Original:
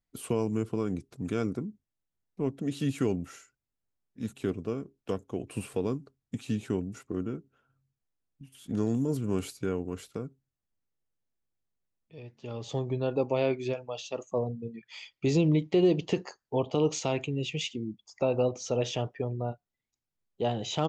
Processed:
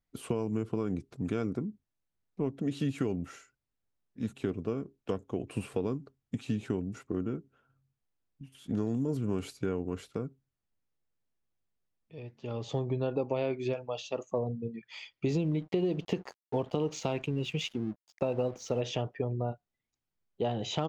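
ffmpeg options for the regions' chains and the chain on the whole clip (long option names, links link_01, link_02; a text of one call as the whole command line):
ffmpeg -i in.wav -filter_complex "[0:a]asettb=1/sr,asplit=3[link_01][link_02][link_03];[link_01]atrim=end=15.304[link_04];[link_02]atrim=start=15.3:end=18.81,asetpts=PTS-STARTPTS,afade=type=in:duration=0.004:curve=qsin,afade=type=out:start_time=3.506:duration=0.004:curve=qsin,equalizer=frequency=190:width_type=o:width=0.4:gain=3.5,aeval=exprs='sgn(val(0))*max(abs(val(0))-0.00299,0)':channel_layout=same[link_05];[link_03]atrim=start=18.806[link_06];[link_04][link_05]acrossfade=duration=0.004:curve1=hsin:curve2=qsin[link_07];[link_07][link_06]acrossfade=duration=0.004:curve1=qsin:curve2=hsin,lowpass=frequency=3800:poles=1,acompressor=threshold=-28dB:ratio=6,volume=1.5dB" out.wav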